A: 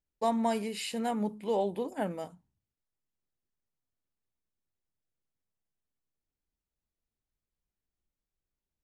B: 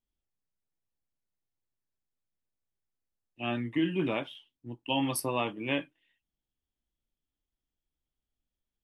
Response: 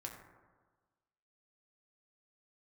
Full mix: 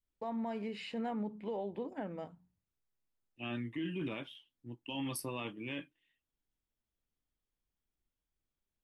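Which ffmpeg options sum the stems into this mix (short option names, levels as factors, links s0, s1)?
-filter_complex "[0:a]acompressor=threshold=0.0282:ratio=6,lowpass=2500,bandreject=f=60:t=h:w=6,bandreject=f=120:t=h:w=6,bandreject=f=180:t=h:w=6,volume=0.841[s0];[1:a]equalizer=f=720:w=1.5:g=-5,acontrast=86,volume=0.251[s1];[s0][s1]amix=inputs=2:normalize=0,adynamicequalizer=threshold=0.00355:dfrequency=800:dqfactor=0.71:tfrequency=800:tqfactor=0.71:attack=5:release=100:ratio=0.375:range=2:mode=cutabove:tftype=bell,alimiter=level_in=2.11:limit=0.0631:level=0:latency=1:release=13,volume=0.473"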